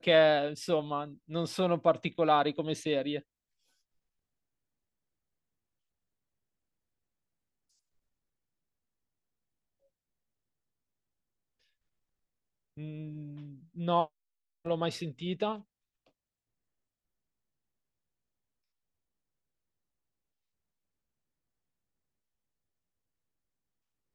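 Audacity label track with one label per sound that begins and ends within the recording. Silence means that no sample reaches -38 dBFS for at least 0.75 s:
12.770000	15.560000	sound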